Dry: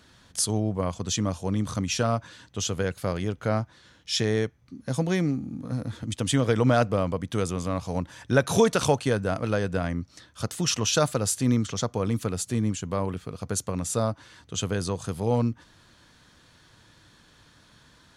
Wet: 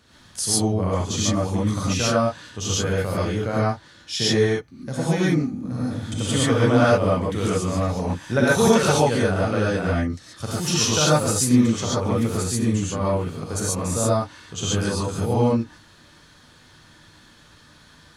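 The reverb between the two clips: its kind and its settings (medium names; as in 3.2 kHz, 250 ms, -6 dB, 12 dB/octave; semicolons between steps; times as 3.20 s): gated-style reverb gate 160 ms rising, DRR -7.5 dB; trim -2.5 dB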